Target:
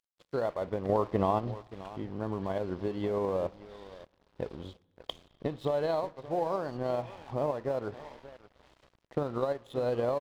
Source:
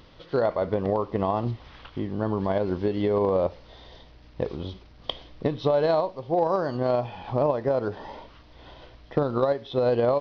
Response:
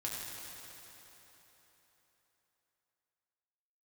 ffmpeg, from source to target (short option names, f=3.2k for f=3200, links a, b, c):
-filter_complex "[0:a]asettb=1/sr,asplit=3[a][b][c];[a]atrim=end=0.894[d];[b]atrim=start=0.89:end=1.39,asetpts=PTS-STARTPTS,afade=t=in:d=0.004:c=qsin,afade=t=out:st=0.496:d=0.004:c=qsin,acontrast=48[e];[c]atrim=start=1.386[f];[d][e]acrossfade=d=0.004:c1=hsin:c2=qsin[g];[g][f]acrossfade=d=0.004:c1=qsin:c2=hsin,asplit=2[h][i];[i]adelay=578,lowpass=f=3.2k:p=1,volume=-15dB,asplit=2[j][k];[k]adelay=578,lowpass=f=3.2k:p=1,volume=0.24,asplit=2[l][m];[m]adelay=578,lowpass=f=3.2k:p=1,volume=0.24[n];[h][j][l][n]amix=inputs=4:normalize=0,aeval=exprs='sgn(val(0))*max(abs(val(0))-0.00708,0)':c=same,asplit=2[o][p];[1:a]atrim=start_sample=2205,afade=t=out:st=0.39:d=0.01,atrim=end_sample=17640,lowpass=3.3k[q];[p][q]afir=irnorm=-1:irlink=0,volume=-24dB[r];[o][r]amix=inputs=2:normalize=0,volume=-7.5dB"